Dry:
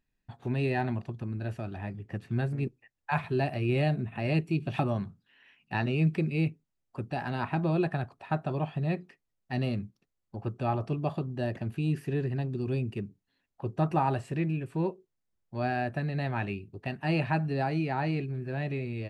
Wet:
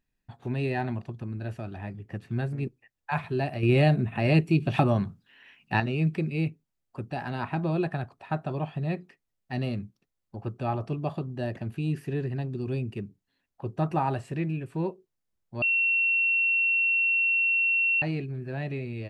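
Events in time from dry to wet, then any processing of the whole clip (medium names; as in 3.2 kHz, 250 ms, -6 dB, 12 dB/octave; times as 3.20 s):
3.63–5.80 s: gain +6 dB
15.62–18.02 s: bleep 2.72 kHz -21 dBFS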